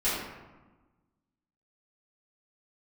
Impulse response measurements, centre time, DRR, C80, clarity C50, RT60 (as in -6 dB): 76 ms, -13.5 dB, 2.5 dB, 0.0 dB, 1.2 s